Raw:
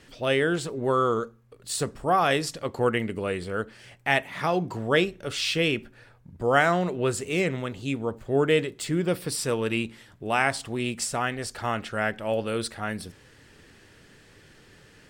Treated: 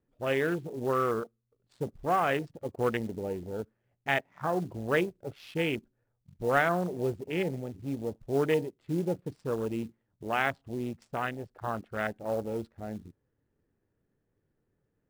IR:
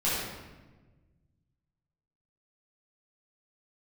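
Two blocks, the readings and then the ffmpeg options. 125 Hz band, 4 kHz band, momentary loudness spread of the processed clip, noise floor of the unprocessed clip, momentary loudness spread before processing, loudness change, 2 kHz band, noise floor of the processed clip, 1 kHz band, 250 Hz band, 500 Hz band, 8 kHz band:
-5.0 dB, -12.5 dB, 12 LU, -55 dBFS, 10 LU, -5.5 dB, -6.0 dB, -79 dBFS, -5.0 dB, -4.5 dB, -4.5 dB, -18.0 dB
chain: -af "adynamicsmooth=sensitivity=4:basefreq=780,afwtdn=0.0398,acrusher=bits=6:mode=log:mix=0:aa=0.000001,volume=-4.5dB"

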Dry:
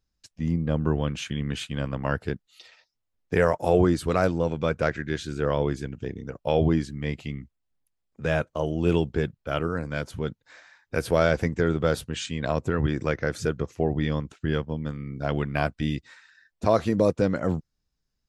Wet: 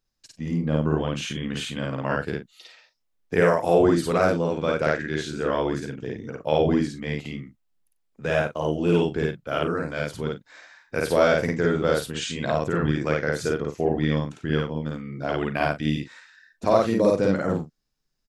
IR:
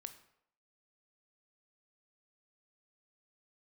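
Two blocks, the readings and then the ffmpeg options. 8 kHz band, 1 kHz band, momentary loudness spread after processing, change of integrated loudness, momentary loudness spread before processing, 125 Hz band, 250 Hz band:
+3.0 dB, +3.0 dB, 12 LU, +2.0 dB, 10 LU, -1.0 dB, +2.0 dB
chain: -af "equalizer=f=65:w=0.88:g=-11.5,aecho=1:1:52.48|93.29:1|0.282"

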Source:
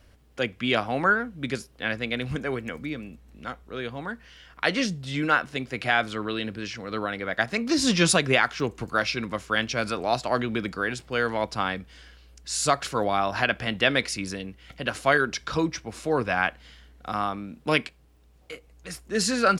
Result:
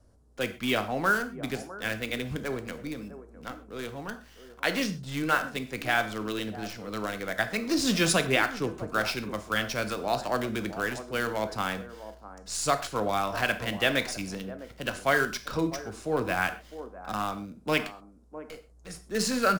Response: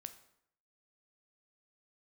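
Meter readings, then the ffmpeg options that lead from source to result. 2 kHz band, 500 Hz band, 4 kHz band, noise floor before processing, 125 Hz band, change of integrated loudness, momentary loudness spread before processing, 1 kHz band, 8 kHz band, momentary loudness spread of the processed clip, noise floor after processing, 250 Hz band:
-3.5 dB, -3.0 dB, -3.5 dB, -56 dBFS, -3.5 dB, -3.0 dB, 14 LU, -3.5 dB, -3.0 dB, 16 LU, -54 dBFS, -3.0 dB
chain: -filter_complex "[0:a]lowpass=f=11k:w=0.5412,lowpass=f=11k:w=1.3066,acrossover=split=190|1300|5000[a][b][c][d];[b]aecho=1:1:656:0.251[e];[c]acrusher=bits=6:dc=4:mix=0:aa=0.000001[f];[a][e][f][d]amix=inputs=4:normalize=0[g];[1:a]atrim=start_sample=2205,afade=t=out:st=0.18:d=0.01,atrim=end_sample=8379,asetrate=42336,aresample=44100[h];[g][h]afir=irnorm=-1:irlink=0,volume=1.5dB"

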